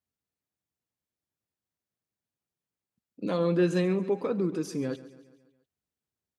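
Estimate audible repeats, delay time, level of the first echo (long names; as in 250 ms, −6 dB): 4, 139 ms, −17.0 dB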